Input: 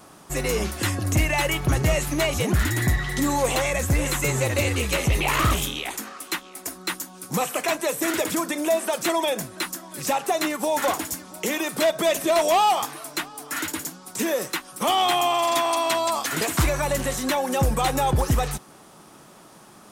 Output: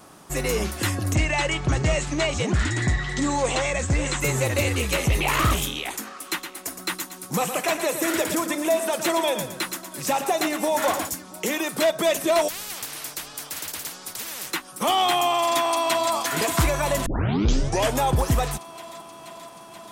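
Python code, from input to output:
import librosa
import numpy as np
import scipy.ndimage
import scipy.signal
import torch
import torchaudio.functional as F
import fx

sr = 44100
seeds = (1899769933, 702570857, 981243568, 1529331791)

y = fx.ellip_lowpass(x, sr, hz=8100.0, order=4, stop_db=60, at=(1.13, 4.2), fade=0.02)
y = fx.echo_feedback(y, sr, ms=115, feedback_pct=36, wet_db=-9, at=(6.13, 11.09))
y = fx.spectral_comp(y, sr, ratio=10.0, at=(12.47, 14.5), fade=0.02)
y = fx.echo_throw(y, sr, start_s=15.39, length_s=0.74, ms=480, feedback_pct=80, wet_db=-9.5)
y = fx.edit(y, sr, fx.tape_start(start_s=17.06, length_s=0.95), tone=tone)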